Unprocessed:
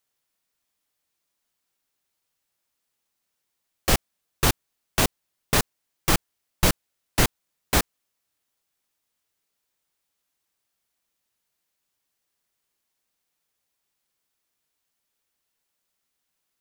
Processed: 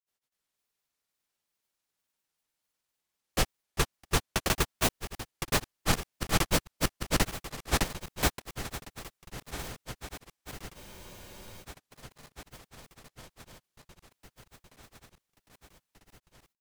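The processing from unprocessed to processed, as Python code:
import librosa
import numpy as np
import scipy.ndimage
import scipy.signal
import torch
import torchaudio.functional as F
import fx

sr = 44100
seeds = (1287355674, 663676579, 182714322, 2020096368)

y = fx.reverse_delay_fb(x, sr, ms=697, feedback_pct=81, wet_db=-14)
y = fx.granulator(y, sr, seeds[0], grain_ms=105.0, per_s=20.0, spray_ms=679.0, spread_st=0)
y = fx.spec_freeze(y, sr, seeds[1], at_s=10.78, hold_s=0.84)
y = F.gain(torch.from_numpy(y), -3.0).numpy()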